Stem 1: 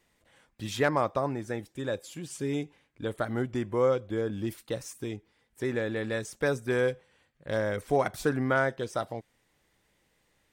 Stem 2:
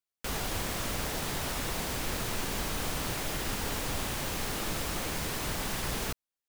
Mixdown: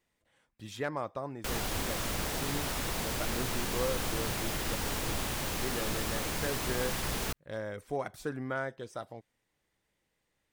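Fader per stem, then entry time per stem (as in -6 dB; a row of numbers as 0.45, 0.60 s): -9.0, -0.5 dB; 0.00, 1.20 s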